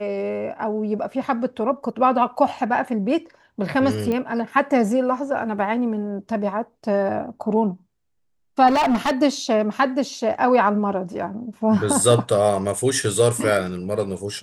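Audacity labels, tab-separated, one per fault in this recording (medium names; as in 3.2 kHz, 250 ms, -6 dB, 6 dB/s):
4.120000	4.120000	pop -14 dBFS
8.670000	9.120000	clipped -15.5 dBFS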